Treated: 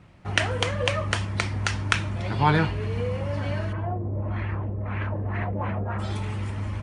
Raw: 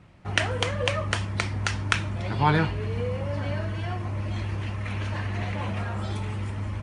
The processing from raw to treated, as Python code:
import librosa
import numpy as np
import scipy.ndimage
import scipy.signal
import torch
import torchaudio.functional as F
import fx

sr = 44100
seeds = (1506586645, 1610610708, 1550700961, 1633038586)

y = fx.filter_lfo_lowpass(x, sr, shape='sine', hz=fx.line((3.72, 0.91), (5.98, 4.4)), low_hz=440.0, high_hz=2000.0, q=1.8, at=(3.72, 5.98), fade=0.02)
y = y * 10.0 ** (1.0 / 20.0)